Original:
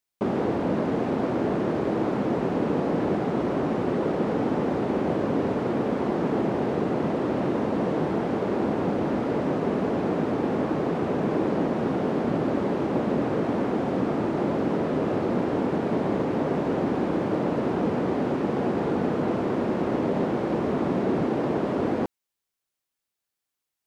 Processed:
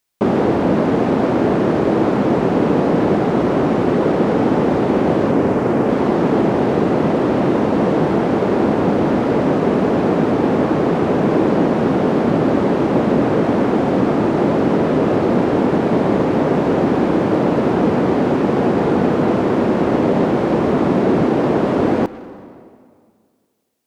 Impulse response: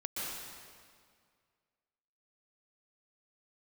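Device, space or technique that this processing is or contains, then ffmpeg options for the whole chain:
saturated reverb return: -filter_complex "[0:a]asettb=1/sr,asplit=3[s0][s1][s2];[s0]atrim=end=5.314[s3];[s1]atrim=start=5.31:end=5.89,asetpts=PTS-STARTPTS,afade=t=in:d=0.004:c=qsin,afade=t=out:st=0.576:d=0.004:c=qsin,equalizer=f=3800:t=o:w=0.72:g=-6[s4];[s2]atrim=start=5.886[s5];[s3][s4]acrossfade=d=0.004:c1=hsin:c2=qsin[s6];[s6][s5]acrossfade=d=0.004:c1=qsin:c2=hsin,asplit=2[s7][s8];[1:a]atrim=start_sample=2205[s9];[s8][s9]afir=irnorm=-1:irlink=0,asoftclip=type=tanh:threshold=0.0668,volume=0.188[s10];[s7][s10]amix=inputs=2:normalize=0,volume=2.82"

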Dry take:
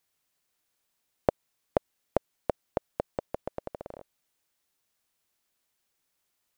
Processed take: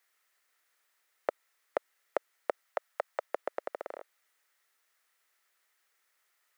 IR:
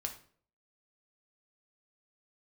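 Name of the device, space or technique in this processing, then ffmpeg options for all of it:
laptop speaker: -filter_complex "[0:a]highpass=f=380:w=0.5412,highpass=f=380:w=1.3066,equalizer=f=1300:t=o:w=0.29:g=8,equalizer=f=1900:t=o:w=0.51:g=10.5,alimiter=limit=0.158:level=0:latency=1:release=28,asettb=1/sr,asplit=3[s0][s1][s2];[s0]atrim=end=2.634[s3];[s1]atrim=start=2.63:end=3.29,asetpts=PTS-STARTPTS,afade=t=in:d=0.004:c=qsin,afade=t=out:st=0.656:d=0.004:c=qsin,highpass=f=550:w=0.5412,highpass=f=550:w=1.3066[s4];[s2]atrim=start=3.286[s5];[s3][s4]acrossfade=d=0.004:c1=hsin:c2=qsin[s6];[s6][s5]acrossfade=d=0.004:c1=qsin:c2=hsin,volume=1.19"

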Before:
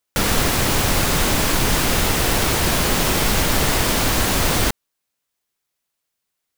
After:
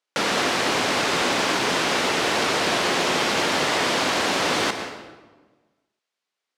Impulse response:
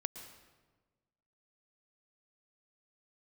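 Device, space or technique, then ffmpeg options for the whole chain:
supermarket ceiling speaker: -filter_complex "[0:a]highpass=310,lowpass=5200[s0];[1:a]atrim=start_sample=2205[s1];[s0][s1]afir=irnorm=-1:irlink=0,volume=1.12"

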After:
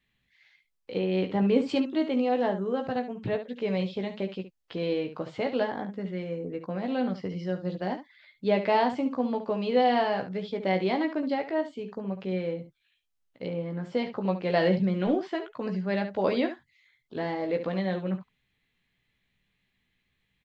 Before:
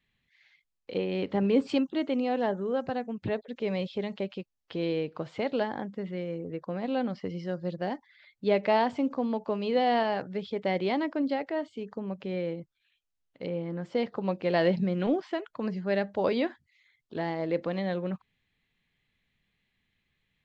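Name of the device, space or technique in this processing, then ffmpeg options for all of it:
slapback doubling: -filter_complex "[0:a]asplit=3[s0][s1][s2];[s1]adelay=16,volume=0.501[s3];[s2]adelay=70,volume=0.299[s4];[s0][s3][s4]amix=inputs=3:normalize=0"

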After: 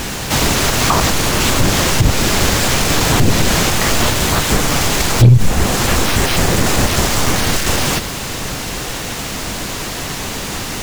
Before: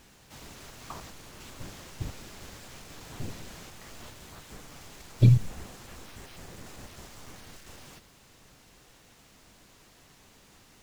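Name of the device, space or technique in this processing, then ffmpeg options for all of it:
loud club master: -af "acompressor=threshold=0.00501:ratio=1.5,asoftclip=type=hard:threshold=0.0562,alimiter=level_in=56.2:limit=0.891:release=50:level=0:latency=1,volume=0.891"

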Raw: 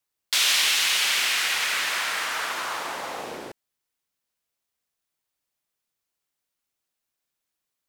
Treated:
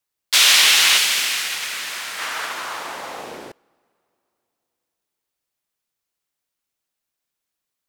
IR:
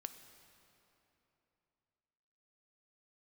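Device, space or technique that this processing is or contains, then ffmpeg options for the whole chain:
keyed gated reverb: -filter_complex "[0:a]asettb=1/sr,asplit=3[s0][s1][s2];[s0]atrim=end=0.984[s3];[s1]atrim=start=0.98:end=2.19,asetpts=PTS-STARTPTS,afade=t=in:d=0.004:c=qsin,afade=t=out:st=1.206:d=0.004:c=qsin,equalizer=f=1000:w=0.33:g=-6[s4];[s2]atrim=start=2.186[s5];[s3][s4]acrossfade=d=0.004:c1=hsin:c2=qsin[s6];[s6][s5]acrossfade=d=0.004:c1=qsin:c2=hsin,asplit=3[s7][s8][s9];[1:a]atrim=start_sample=2205[s10];[s8][s10]afir=irnorm=-1:irlink=0[s11];[s9]apad=whole_len=347887[s12];[s11][s12]sidechaingate=range=0.0708:threshold=0.0562:ratio=16:detection=peak,volume=2.51[s13];[s7][s13]amix=inputs=2:normalize=0"

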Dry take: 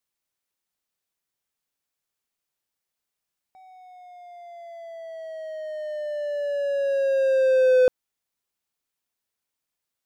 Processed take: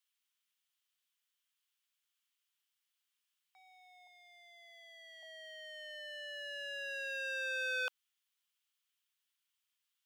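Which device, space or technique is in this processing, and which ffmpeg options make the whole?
headphones lying on a table: -filter_complex "[0:a]asettb=1/sr,asplit=3[s0][s1][s2];[s0]atrim=end=4.074[s3];[s1]atrim=start=4.07:end=5.23,asetpts=PTS-STARTPTS,afade=t=in:d=0.004:c=qsin,afade=t=out:st=1.156:d=0.004:c=qsin,highpass=900[s4];[s2]atrim=start=5.226[s5];[s3][s4]acrossfade=d=0.004:c1=hsin:c2=qsin[s6];[s6][s5]acrossfade=d=0.004:c1=qsin:c2=hsin,highpass=f=1100:w=0.5412,highpass=f=1100:w=1.3066,equalizer=f=3100:t=o:w=0.5:g=9,volume=0.75"

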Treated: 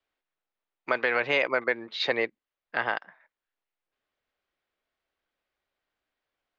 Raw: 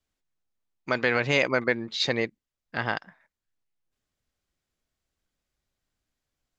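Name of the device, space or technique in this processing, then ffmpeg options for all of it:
DJ mixer with the lows and highs turned down: -filter_complex "[0:a]acrossover=split=350 3800:gain=0.141 1 0.0631[s0][s1][s2];[s0][s1][s2]amix=inputs=3:normalize=0,alimiter=limit=0.15:level=0:latency=1:release=426,volume=1.58"

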